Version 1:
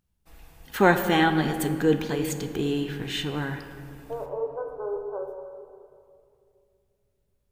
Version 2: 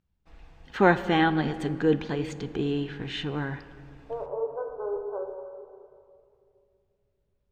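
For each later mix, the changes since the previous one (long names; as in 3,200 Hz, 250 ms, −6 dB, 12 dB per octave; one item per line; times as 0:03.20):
first voice: send −6.0 dB
master: add high-frequency loss of the air 150 metres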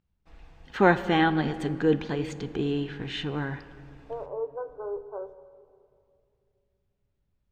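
second voice: send −11.0 dB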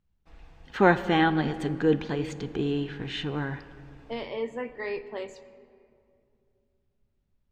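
second voice: remove linear-phase brick-wall band-pass 370–1,600 Hz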